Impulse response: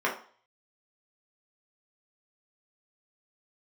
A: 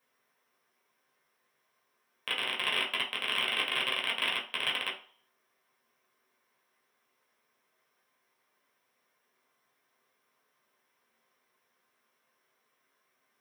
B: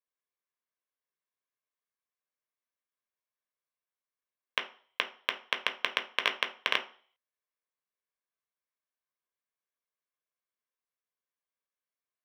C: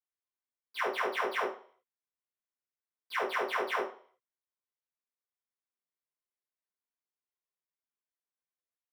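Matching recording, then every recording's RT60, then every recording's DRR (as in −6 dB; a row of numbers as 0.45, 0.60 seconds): A; 0.45, 0.45, 0.45 seconds; −4.0, 5.0, −13.0 decibels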